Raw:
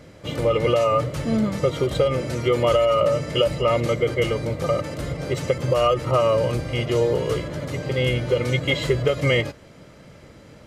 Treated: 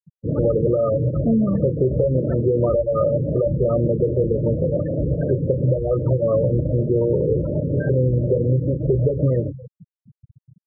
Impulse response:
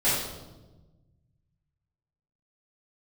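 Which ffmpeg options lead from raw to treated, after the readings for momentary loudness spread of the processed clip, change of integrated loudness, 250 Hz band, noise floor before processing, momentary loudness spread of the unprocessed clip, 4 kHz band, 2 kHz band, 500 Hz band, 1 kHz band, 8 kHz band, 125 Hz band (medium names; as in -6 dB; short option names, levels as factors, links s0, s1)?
3 LU, +1.5 dB, +5.0 dB, -47 dBFS, 7 LU, under -40 dB, under -15 dB, +1.0 dB, -11.0 dB, under -40 dB, +5.5 dB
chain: -filter_complex "[0:a]acrossover=split=490|3000[s0][s1][s2];[s1]acompressor=threshold=0.0251:ratio=6[s3];[s0][s3][s2]amix=inputs=3:normalize=0,aemphasis=mode=production:type=50kf,asoftclip=type=tanh:threshold=0.237,asplit=2[s4][s5];[s5]adelay=31,volume=0.316[s6];[s4][s6]amix=inputs=2:normalize=0,aecho=1:1:274:0.0794,acompressor=threshold=0.0708:ratio=5,afftfilt=real='re*gte(hypot(re,im),0.0562)':imag='im*gte(hypot(re,im),0.0562)':win_size=1024:overlap=0.75,afftfilt=real='re*lt(b*sr/1024,530*pow(2000/530,0.5+0.5*sin(2*PI*2.7*pts/sr)))':imag='im*lt(b*sr/1024,530*pow(2000/530,0.5+0.5*sin(2*PI*2.7*pts/sr)))':win_size=1024:overlap=0.75,volume=2.66"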